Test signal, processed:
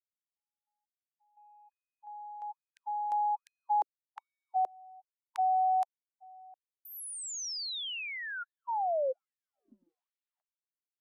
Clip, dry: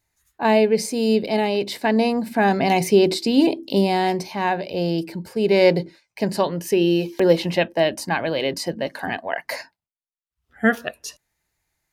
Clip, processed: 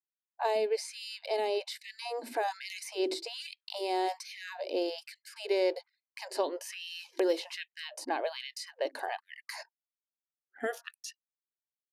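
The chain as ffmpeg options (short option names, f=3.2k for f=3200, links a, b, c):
-filter_complex "[0:a]acrossover=split=950|4100[a][b][c];[a]acompressor=threshold=-23dB:ratio=4[d];[b]acompressor=threshold=-41dB:ratio=4[e];[c]acompressor=threshold=-40dB:ratio=4[f];[d][e][f]amix=inputs=3:normalize=0,lowpass=f=12k:w=0.5412,lowpass=f=12k:w=1.3066,anlmdn=0.0158,afftfilt=real='re*gte(b*sr/1024,240*pow(1800/240,0.5+0.5*sin(2*PI*1.2*pts/sr)))':imag='im*gte(b*sr/1024,240*pow(1800/240,0.5+0.5*sin(2*PI*1.2*pts/sr)))':win_size=1024:overlap=0.75,volume=-3.5dB"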